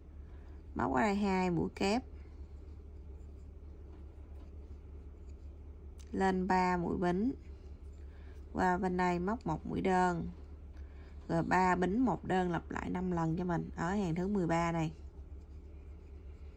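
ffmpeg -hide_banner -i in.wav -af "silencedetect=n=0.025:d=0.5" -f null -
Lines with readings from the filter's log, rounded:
silence_start: 0.00
silence_end: 0.77 | silence_duration: 0.77
silence_start: 1.99
silence_end: 6.14 | silence_duration: 4.15
silence_start: 7.31
silence_end: 8.55 | silence_duration: 1.24
silence_start: 10.25
silence_end: 11.30 | silence_duration: 1.05
silence_start: 14.87
silence_end: 16.57 | silence_duration: 1.69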